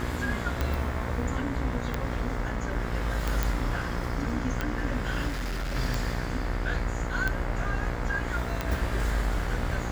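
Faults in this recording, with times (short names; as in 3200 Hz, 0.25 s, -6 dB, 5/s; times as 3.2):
buzz 60 Hz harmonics 37 -34 dBFS
tick 45 rpm -14 dBFS
3.43 pop
5.27–5.76 clipped -28 dBFS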